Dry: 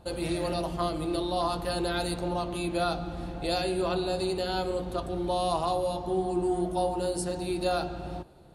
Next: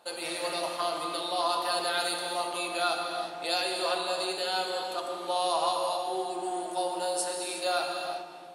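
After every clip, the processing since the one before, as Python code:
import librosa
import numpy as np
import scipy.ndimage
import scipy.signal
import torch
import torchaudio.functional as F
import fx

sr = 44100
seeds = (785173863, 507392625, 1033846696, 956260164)

y = scipy.signal.sosfilt(scipy.signal.bessel(2, 900.0, 'highpass', norm='mag', fs=sr, output='sos'), x)
y = fx.rev_gated(y, sr, seeds[0], gate_ms=400, shape='flat', drr_db=2.0)
y = y * librosa.db_to_amplitude(3.5)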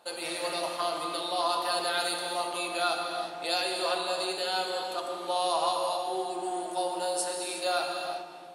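y = x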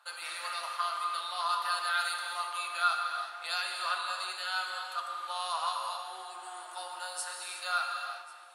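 y = fx.highpass_res(x, sr, hz=1300.0, q=3.6)
y = y + 10.0 ** (-21.5 / 20.0) * np.pad(y, (int(1092 * sr / 1000.0), 0))[:len(y)]
y = y * librosa.db_to_amplitude(-5.5)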